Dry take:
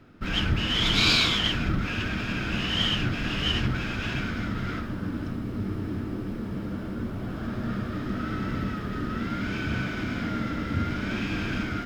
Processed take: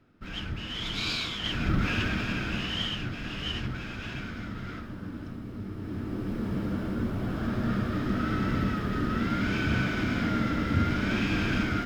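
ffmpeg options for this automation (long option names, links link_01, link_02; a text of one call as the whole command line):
ffmpeg -i in.wav -af "volume=11dB,afade=type=in:start_time=1.38:duration=0.46:silence=0.251189,afade=type=out:start_time=1.84:duration=1.06:silence=0.354813,afade=type=in:start_time=5.75:duration=0.73:silence=0.354813" out.wav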